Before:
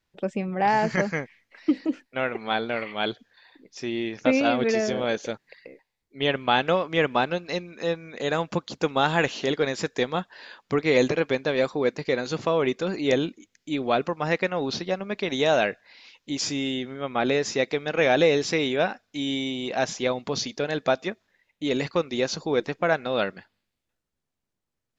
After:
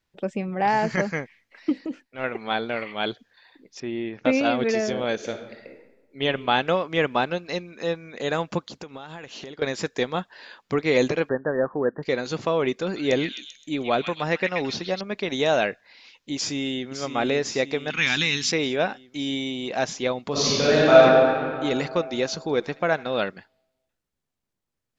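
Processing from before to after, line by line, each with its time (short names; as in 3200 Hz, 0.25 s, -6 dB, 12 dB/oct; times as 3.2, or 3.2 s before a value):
1.69–2.24 transient shaper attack -10 dB, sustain -3 dB
3.8–4.25 air absorption 350 m
5.14–6.23 reverb throw, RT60 1.1 s, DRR 5 dB
8.64–9.62 compressor 16:1, threshold -34 dBFS
11.29–12.03 brick-wall FIR low-pass 1900 Hz
12.83–15.01 delay with a stepping band-pass 0.13 s, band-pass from 2500 Hz, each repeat 0.7 oct, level -1 dB
16.35–16.91 echo throw 0.56 s, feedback 60%, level -8.5 dB
17.9–18.52 EQ curve 230 Hz 0 dB, 590 Hz -25 dB, 950 Hz -4 dB, 2800 Hz +7 dB
20.31–20.97 reverb throw, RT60 2.5 s, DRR -10 dB
22.34–23.29 thinning echo 76 ms, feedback 68%, high-pass 790 Hz, level -20 dB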